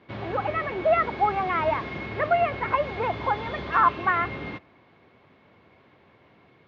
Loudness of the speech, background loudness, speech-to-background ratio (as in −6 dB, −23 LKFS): −25.5 LKFS, −34.5 LKFS, 9.0 dB